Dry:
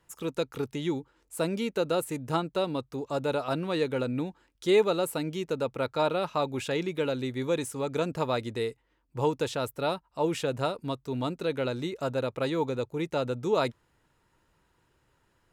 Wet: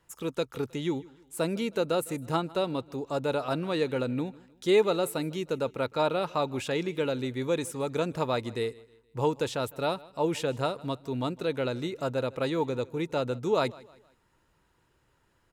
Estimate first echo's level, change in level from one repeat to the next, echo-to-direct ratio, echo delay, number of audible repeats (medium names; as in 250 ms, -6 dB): -22.0 dB, -8.0 dB, -21.5 dB, 157 ms, 2